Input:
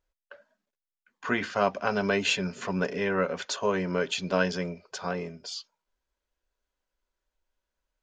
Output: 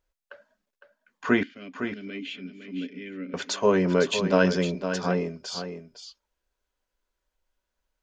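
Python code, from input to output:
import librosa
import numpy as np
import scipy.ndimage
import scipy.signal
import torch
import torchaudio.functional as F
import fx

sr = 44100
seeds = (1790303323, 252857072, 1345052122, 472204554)

y = fx.vowel_filter(x, sr, vowel='i', at=(1.43, 3.34))
y = fx.dynamic_eq(y, sr, hz=290.0, q=0.83, threshold_db=-42.0, ratio=4.0, max_db=7)
y = y + 10.0 ** (-9.0 / 20.0) * np.pad(y, (int(508 * sr / 1000.0), 0))[:len(y)]
y = y * 10.0 ** (2.0 / 20.0)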